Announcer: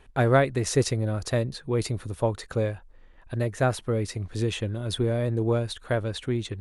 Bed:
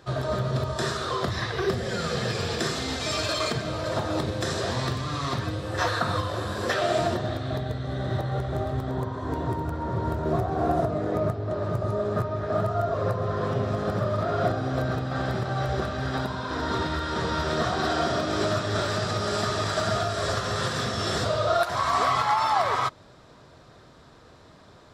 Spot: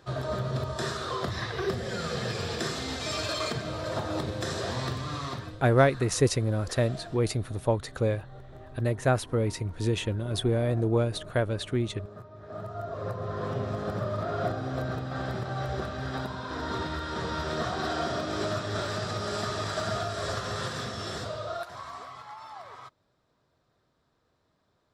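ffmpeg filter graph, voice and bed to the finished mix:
-filter_complex "[0:a]adelay=5450,volume=-0.5dB[a];[1:a]volume=10dB,afade=t=out:st=5.13:d=0.53:silence=0.177828,afade=t=in:st=12.33:d=1.15:silence=0.199526,afade=t=out:st=20.51:d=1.56:silence=0.158489[b];[a][b]amix=inputs=2:normalize=0"

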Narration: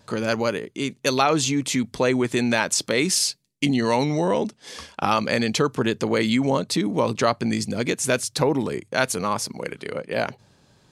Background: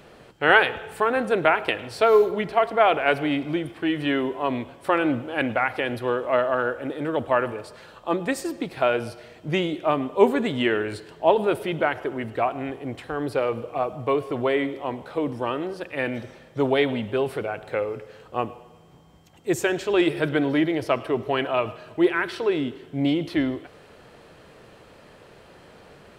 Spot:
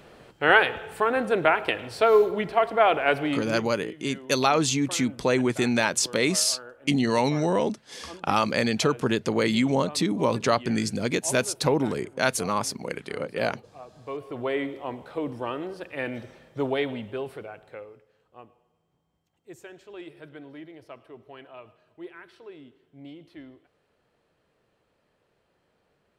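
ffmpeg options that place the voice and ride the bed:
-filter_complex "[0:a]adelay=3250,volume=-2dB[a];[1:a]volume=13dB,afade=t=out:st=3.2:d=0.61:silence=0.133352,afade=t=in:st=13.95:d=0.62:silence=0.188365,afade=t=out:st=16.55:d=1.5:silence=0.141254[b];[a][b]amix=inputs=2:normalize=0"

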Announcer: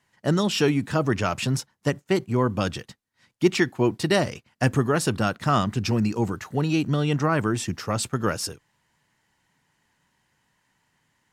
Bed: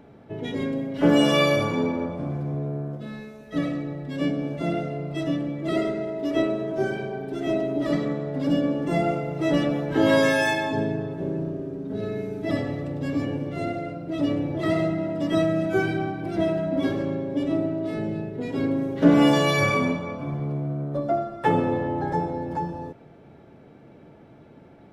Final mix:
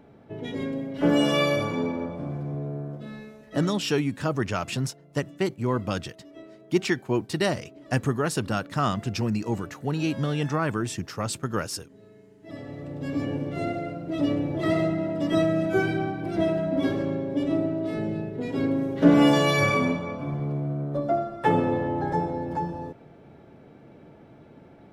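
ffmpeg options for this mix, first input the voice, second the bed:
-filter_complex "[0:a]adelay=3300,volume=-3.5dB[a];[1:a]volume=19dB,afade=t=out:st=3.29:d=0.67:silence=0.105925,afade=t=in:st=12.41:d=0.96:silence=0.0794328[b];[a][b]amix=inputs=2:normalize=0"

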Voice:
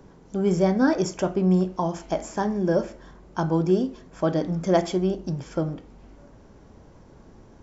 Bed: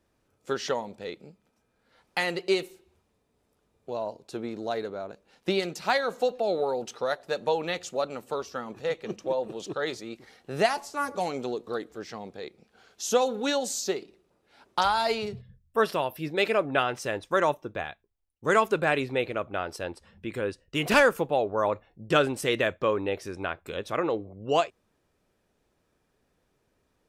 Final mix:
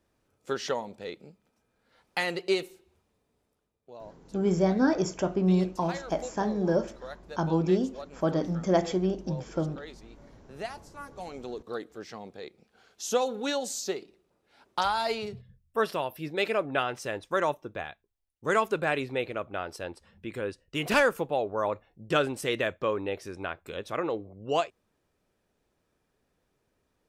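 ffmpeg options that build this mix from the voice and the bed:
-filter_complex "[0:a]adelay=4000,volume=-3.5dB[a];[1:a]volume=9dB,afade=t=out:st=3.32:d=0.46:silence=0.251189,afade=t=in:st=11.14:d=0.65:silence=0.298538[b];[a][b]amix=inputs=2:normalize=0"

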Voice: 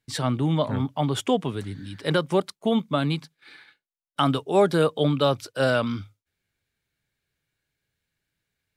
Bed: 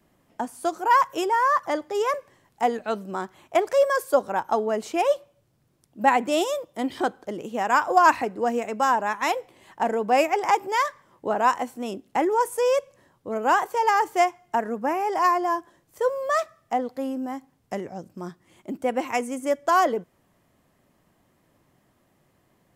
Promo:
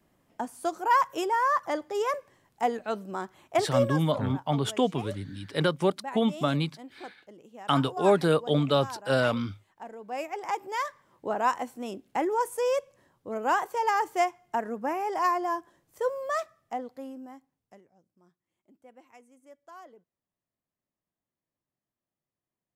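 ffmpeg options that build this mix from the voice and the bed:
-filter_complex "[0:a]adelay=3500,volume=-2.5dB[a];[1:a]volume=9.5dB,afade=t=out:st=3.68:d=0.43:silence=0.188365,afade=t=in:st=9.98:d=1.22:silence=0.211349,afade=t=out:st=16.07:d=1.79:silence=0.0668344[b];[a][b]amix=inputs=2:normalize=0"

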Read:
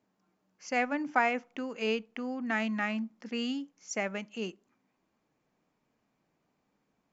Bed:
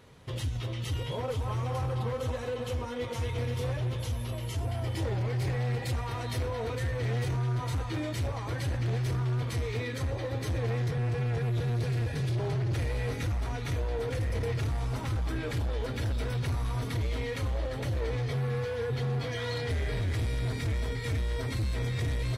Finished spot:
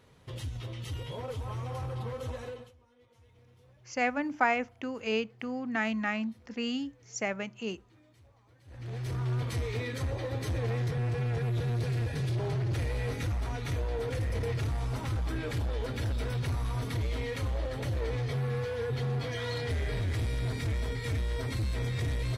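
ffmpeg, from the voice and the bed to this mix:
-filter_complex "[0:a]adelay=3250,volume=0.5dB[a];[1:a]volume=23dB,afade=t=out:st=2.44:d=0.28:silence=0.0630957,afade=t=in:st=8.65:d=0.67:silence=0.0398107[b];[a][b]amix=inputs=2:normalize=0"

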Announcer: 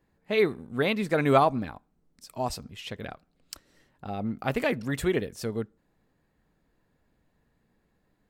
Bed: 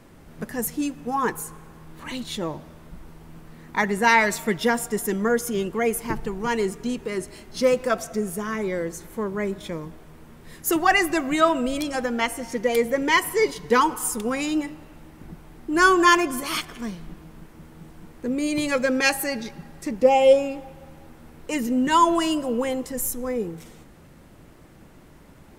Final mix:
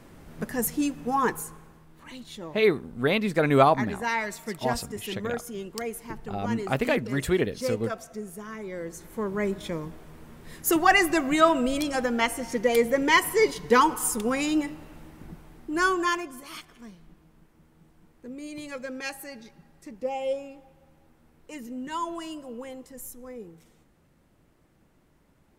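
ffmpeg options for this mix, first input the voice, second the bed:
-filter_complex "[0:a]adelay=2250,volume=2dB[a];[1:a]volume=10dB,afade=t=out:st=1.18:d=0.69:silence=0.298538,afade=t=in:st=8.67:d=0.78:silence=0.316228,afade=t=out:st=14.97:d=1.34:silence=0.211349[b];[a][b]amix=inputs=2:normalize=0"

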